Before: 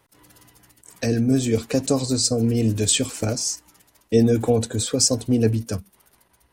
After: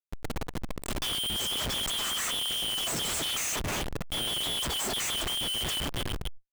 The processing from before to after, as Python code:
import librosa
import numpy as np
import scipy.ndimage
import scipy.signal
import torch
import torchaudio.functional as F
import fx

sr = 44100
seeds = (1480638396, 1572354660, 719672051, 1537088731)

y = fx.band_shuffle(x, sr, order='3412')
y = fx.low_shelf(y, sr, hz=96.0, db=6.5)
y = fx.echo_feedback(y, sr, ms=270, feedback_pct=41, wet_db=-21)
y = fx.over_compress(y, sr, threshold_db=-24.0, ratio=-1.0)
y = fx.dynamic_eq(y, sr, hz=2500.0, q=0.73, threshold_db=-37.0, ratio=4.0, max_db=-7)
y = fx.schmitt(y, sr, flips_db=-39.0)
y = fx.sustainer(y, sr, db_per_s=82.0)